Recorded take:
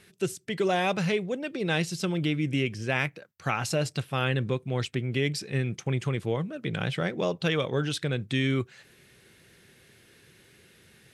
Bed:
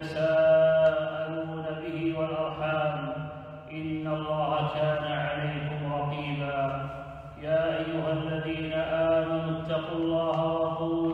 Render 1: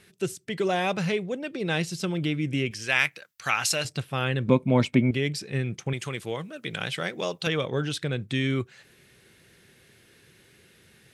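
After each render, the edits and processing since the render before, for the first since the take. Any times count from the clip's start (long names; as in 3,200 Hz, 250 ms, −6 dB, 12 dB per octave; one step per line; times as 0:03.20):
0:02.71–0:03.85: tilt shelving filter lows −9.5 dB, about 870 Hz
0:04.48–0:05.11: hollow resonant body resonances 240/580/920/2,200 Hz, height 15 dB, ringing for 25 ms
0:05.93–0:07.47: spectral tilt +2.5 dB per octave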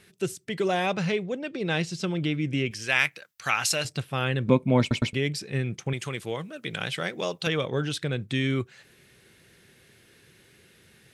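0:00.86–0:02.69: low-pass filter 7,400 Hz
0:04.80: stutter in place 0.11 s, 3 plays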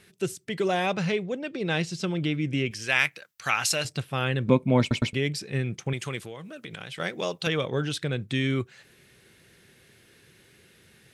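0:06.25–0:07.00: downward compressor 5 to 1, threshold −35 dBFS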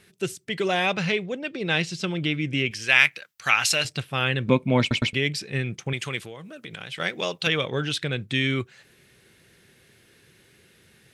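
dynamic equaliser 2,700 Hz, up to +7 dB, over −43 dBFS, Q 0.72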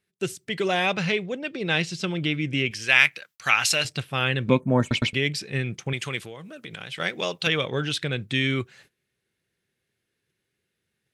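0:04.60–0:04.88: gain on a spectral selection 1,900–5,900 Hz −20 dB
noise gate −52 dBFS, range −22 dB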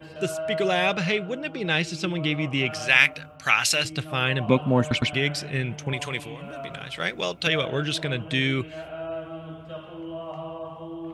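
mix in bed −8.5 dB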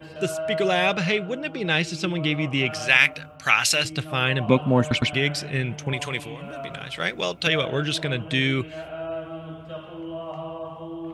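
level +1.5 dB
brickwall limiter −2 dBFS, peak gain reduction 2.5 dB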